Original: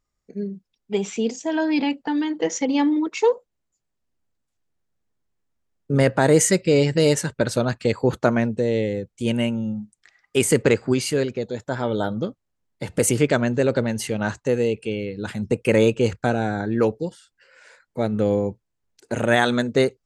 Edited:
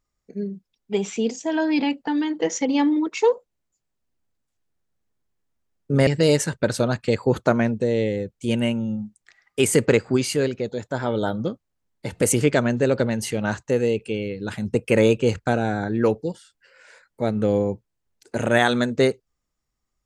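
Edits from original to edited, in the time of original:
6.07–6.84 cut

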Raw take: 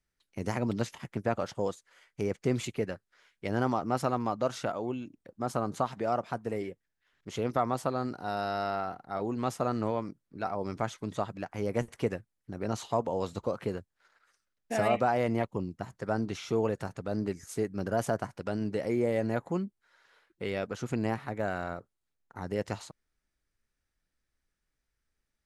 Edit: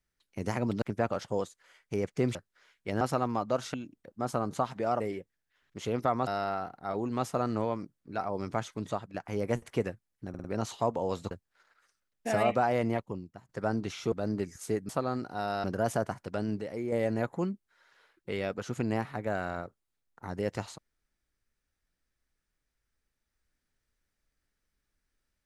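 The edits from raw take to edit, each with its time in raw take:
0.82–1.09 cut
2.62–2.92 cut
3.58–3.92 cut
4.65–4.95 cut
6.21–6.51 cut
7.78–8.53 move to 17.77
11.15–11.4 fade out, to -10 dB
12.55 stutter 0.05 s, 4 plays
13.42–13.76 cut
15.31–15.94 fade out, to -19 dB
16.57–17 cut
18.74–19.05 gain -6 dB

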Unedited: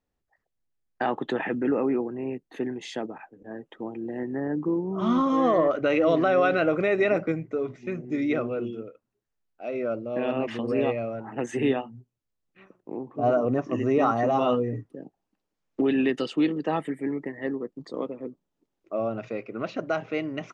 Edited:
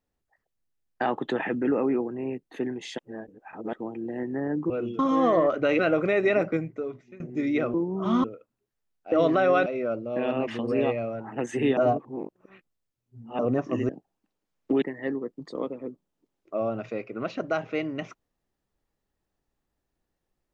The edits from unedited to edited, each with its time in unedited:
2.98–3.73 reverse
4.7–5.2 swap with 8.49–8.78
6–6.54 move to 9.66
7.33–7.95 fade out, to -21 dB
11.77–13.39 reverse
13.89–14.98 cut
15.91–17.21 cut

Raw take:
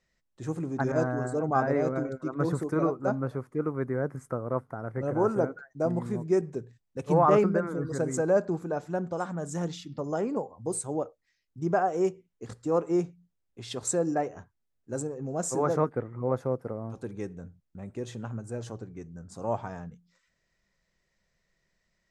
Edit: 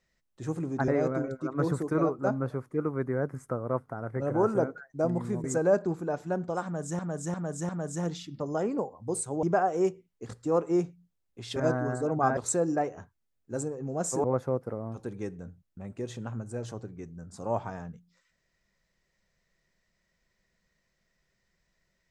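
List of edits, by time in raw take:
0.88–1.69 move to 13.76
6.25–8.07 cut
9.27–9.62 loop, 4 plays
11.01–11.63 cut
15.63–16.22 cut

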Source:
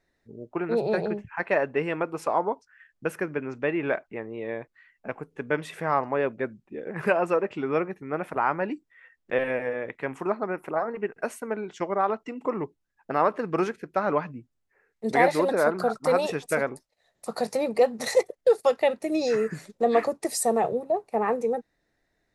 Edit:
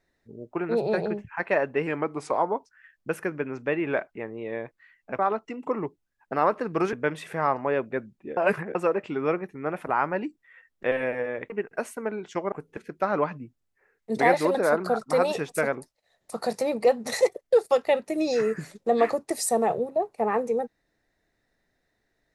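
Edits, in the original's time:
1.87–2.32 speed 92%
5.15–5.4 swap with 11.97–13.71
6.84–7.22 reverse
9.97–10.95 cut

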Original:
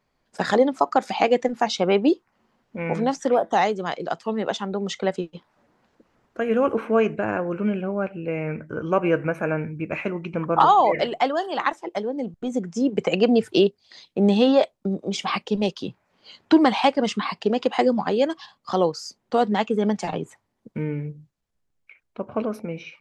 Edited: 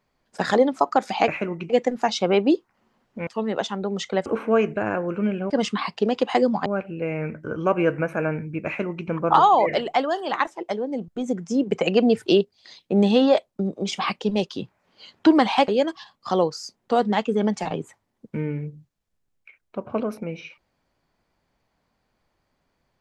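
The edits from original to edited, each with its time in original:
2.85–4.17 cut
5.16–6.68 cut
9.92–10.34 copy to 1.28
16.94–18.1 move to 7.92

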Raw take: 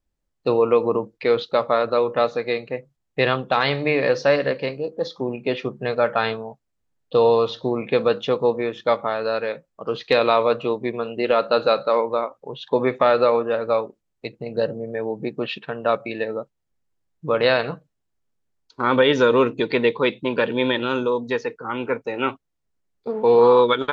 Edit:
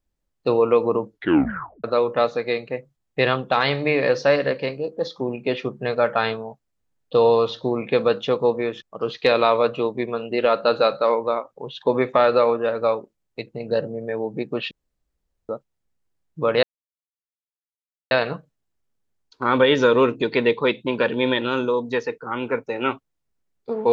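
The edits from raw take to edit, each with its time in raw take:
1.1 tape stop 0.74 s
8.82–9.68 cut
15.57–16.35 room tone
17.49 insert silence 1.48 s

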